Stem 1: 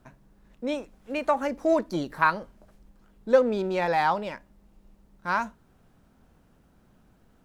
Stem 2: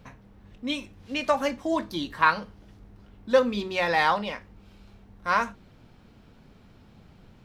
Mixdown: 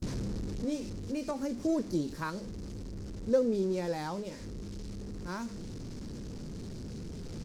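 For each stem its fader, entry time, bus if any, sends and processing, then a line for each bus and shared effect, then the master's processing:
-1.5 dB, 0.00 s, no send, dry
-2.5 dB, 21 ms, polarity flipped, no send, infinite clipping; LPF 5200 Hz 12 dB/oct; auto duck -8 dB, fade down 1.15 s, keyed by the first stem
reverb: off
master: band shelf 1500 Hz -15 dB 2.9 oct

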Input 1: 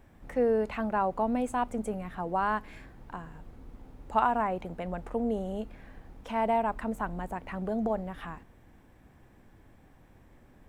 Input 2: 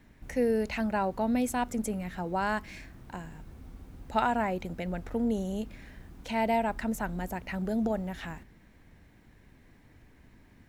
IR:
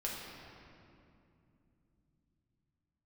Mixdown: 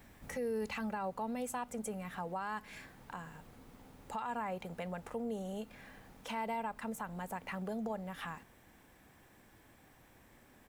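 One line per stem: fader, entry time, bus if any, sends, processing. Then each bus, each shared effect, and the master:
-0.5 dB, 0.00 s, no send, compressor 2:1, threshold -38 dBFS, peak gain reduction 10.5 dB
-4.0 dB, 2.4 ms, polarity flipped, no send, low shelf 370 Hz +11 dB; auto duck -14 dB, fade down 1.35 s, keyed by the first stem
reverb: off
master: tilt +2.5 dB/oct; limiter -30 dBFS, peak gain reduction 8.5 dB

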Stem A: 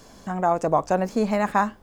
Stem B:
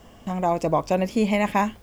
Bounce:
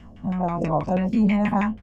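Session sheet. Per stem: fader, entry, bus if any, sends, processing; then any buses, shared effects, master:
-14.5 dB, 0.00 s, no send, reverb removal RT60 0.54 s; three-band expander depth 70%
+2.0 dB, 0.4 ms, no send, spectral dilation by 60 ms; EQ curve 220 Hz 0 dB, 440 Hz -14 dB, 1700 Hz -10 dB, 7900 Hz +6 dB; LFO low-pass saw down 6.2 Hz 430–2400 Hz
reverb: off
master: dry

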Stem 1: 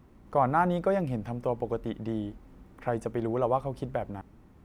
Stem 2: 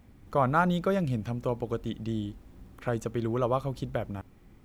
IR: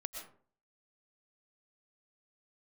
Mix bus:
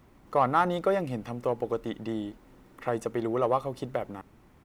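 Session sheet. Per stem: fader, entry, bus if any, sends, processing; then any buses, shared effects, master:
+3.0 dB, 0.00 s, no send, bell 130 Hz +4 dB 0.43 oct
-3.0 dB, 1 ms, polarity flipped, no send, soft clip -20 dBFS, distortion -15 dB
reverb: off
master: low shelf 360 Hz -9 dB

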